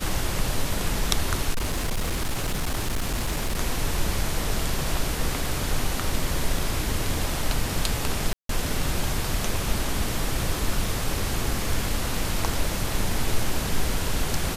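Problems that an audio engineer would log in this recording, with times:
0:01.52–0:03.59: clipping −21.5 dBFS
0:08.33–0:08.49: drop-out 163 ms

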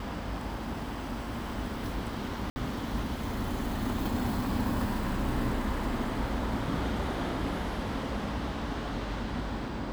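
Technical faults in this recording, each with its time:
0:02.50–0:02.56: drop-out 60 ms

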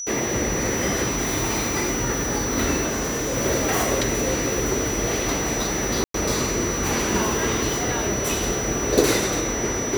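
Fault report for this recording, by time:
whistle 5,900 Hz −28 dBFS
0:02.87–0:03.37: clipping −21.5 dBFS
0:06.04–0:06.14: drop-out 103 ms

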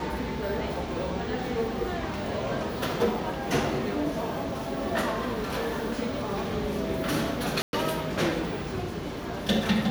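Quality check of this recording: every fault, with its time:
0:07.62–0:07.73: drop-out 111 ms

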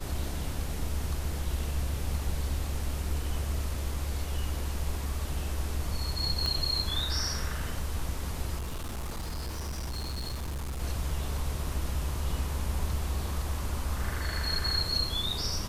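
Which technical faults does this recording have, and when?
0:06.46: click −18 dBFS
0:08.57–0:10.81: clipping −31.5 dBFS

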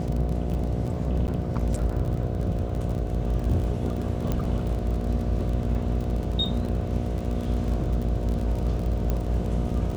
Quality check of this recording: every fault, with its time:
mains buzz 60 Hz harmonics 12 −30 dBFS
surface crackle 32 per second −30 dBFS
0:01.27–0:01.28: drop-out 9.9 ms
0:04.32: click −14 dBFS
0:09.10: click −14 dBFS

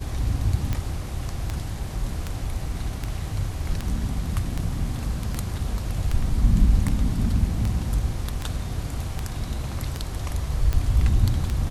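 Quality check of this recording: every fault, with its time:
scratch tick 78 rpm −13 dBFS

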